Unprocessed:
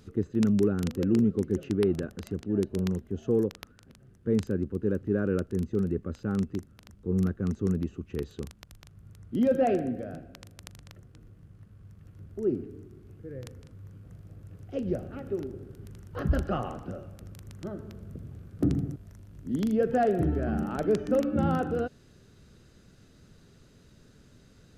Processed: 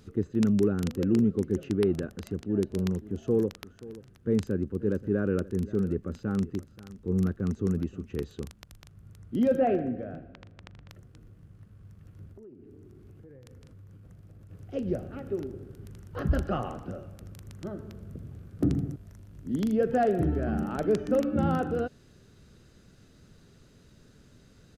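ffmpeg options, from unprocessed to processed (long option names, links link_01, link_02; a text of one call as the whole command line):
ffmpeg -i in.wav -filter_complex "[0:a]asplit=3[link_01][link_02][link_03];[link_01]afade=type=out:start_time=2.67:duration=0.02[link_04];[link_02]aecho=1:1:530:0.119,afade=type=in:start_time=2.67:duration=0.02,afade=type=out:start_time=8.23:duration=0.02[link_05];[link_03]afade=type=in:start_time=8.23:duration=0.02[link_06];[link_04][link_05][link_06]amix=inputs=3:normalize=0,asettb=1/sr,asplit=3[link_07][link_08][link_09];[link_07]atrim=end=9.594[link_10];[link_08]atrim=start=9.59:end=10.89,asetpts=PTS-STARTPTS,afade=type=in:duration=0.004:curve=qsin,afade=type=out:start_time=1.296:duration=0.004:curve=qsin,lowpass=2800[link_11];[link_09]atrim=start=10.886[link_12];[link_10][link_11]acrossfade=duration=0.004:curve1=hsin:curve2=qsin[link_13];[link_13][link_12]acrossfade=duration=0.004:curve1=qsin:curve2=hsin,asettb=1/sr,asplit=3[link_14][link_15][link_16];[link_14]atrim=end=12.324[link_17];[link_15]atrim=start=12.32:end=14.5,asetpts=PTS-STARTPTS,afade=type=in:duration=0.004:curve=qsin,afade=type=out:start_time=2.176:duration=0.004:curve=qsin,acompressor=threshold=-46dB:ratio=10:attack=3.2:release=140:knee=1:detection=peak[link_18];[link_16]atrim=start=14.496[link_19];[link_17][link_18]acrossfade=duration=0.004:curve1=hsin:curve2=qsin[link_20];[link_20][link_19]acrossfade=duration=0.004:curve1=qsin:curve2=hsin" out.wav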